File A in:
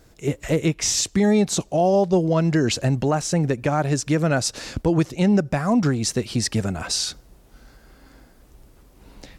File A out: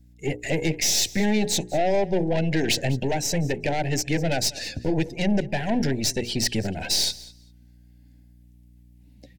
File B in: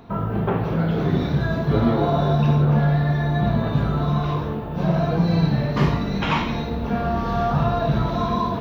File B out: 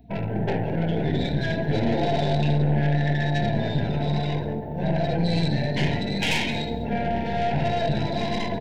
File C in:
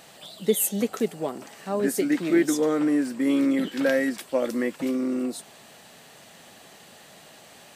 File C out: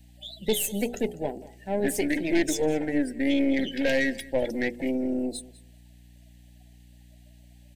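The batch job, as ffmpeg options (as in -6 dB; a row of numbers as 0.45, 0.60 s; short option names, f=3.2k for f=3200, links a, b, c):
-filter_complex "[0:a]highpass=f=66:w=0.5412,highpass=f=66:w=1.3066,bandreject=f=60:t=h:w=6,bandreject=f=120:t=h:w=6,bandreject=f=180:t=h:w=6,bandreject=f=240:t=h:w=6,bandreject=f=300:t=h:w=6,bandreject=f=360:t=h:w=6,bandreject=f=420:t=h:w=6,bandreject=f=480:t=h:w=6,afftdn=nr=22:nf=-37,tiltshelf=f=1.3k:g=-8,acrossover=split=6100[a][b];[b]acompressor=threshold=-35dB:ratio=4:attack=1:release=60[c];[a][c]amix=inputs=2:normalize=0,equalizer=f=5.8k:w=0.54:g=-6.5,aeval=exprs='val(0)+0.00141*(sin(2*PI*60*n/s)+sin(2*PI*2*60*n/s)/2+sin(2*PI*3*60*n/s)/3+sin(2*PI*4*60*n/s)/4+sin(2*PI*5*60*n/s)/5)':c=same,aeval=exprs='(tanh(20*val(0)+0.6)-tanh(0.6))/20':c=same,asuperstop=centerf=1200:order=4:qfactor=1.3,asplit=2[d][e];[e]aecho=0:1:199|398:0.1|0.015[f];[d][f]amix=inputs=2:normalize=0,volume=8.5dB"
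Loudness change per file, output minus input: -3.0, -3.5, -2.5 LU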